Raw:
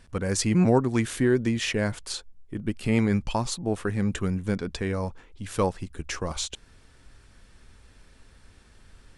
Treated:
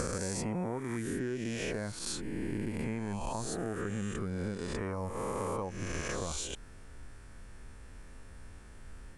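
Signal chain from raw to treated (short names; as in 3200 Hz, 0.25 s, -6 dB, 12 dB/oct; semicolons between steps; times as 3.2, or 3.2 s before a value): spectral swells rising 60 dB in 1.68 s; bell 3900 Hz -9 dB 1.2 oct; compressor 10:1, threshold -32 dBFS, peak gain reduction 18.5 dB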